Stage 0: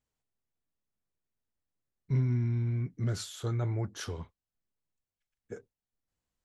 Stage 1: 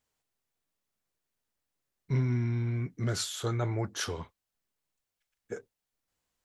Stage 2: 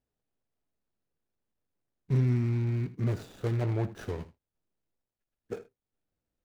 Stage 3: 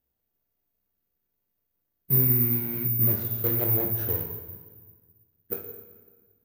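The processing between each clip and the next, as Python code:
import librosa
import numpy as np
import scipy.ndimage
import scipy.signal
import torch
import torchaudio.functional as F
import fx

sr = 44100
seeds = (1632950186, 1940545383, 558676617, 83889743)

y1 = fx.low_shelf(x, sr, hz=290.0, db=-9.0)
y1 = F.gain(torch.from_numpy(y1), 7.0).numpy()
y2 = scipy.ndimage.median_filter(y1, 41, mode='constant')
y2 = y2 + 10.0 ** (-16.0 / 20.0) * np.pad(y2, (int(79 * sr / 1000.0), 0))[:len(y2)]
y2 = F.gain(torch.from_numpy(y2), 2.5).numpy()
y3 = fx.rev_fdn(y2, sr, rt60_s=1.5, lf_ratio=1.3, hf_ratio=0.9, size_ms=92.0, drr_db=3.0)
y3 = (np.kron(scipy.signal.resample_poly(y3, 1, 3), np.eye(3)[0]) * 3)[:len(y3)]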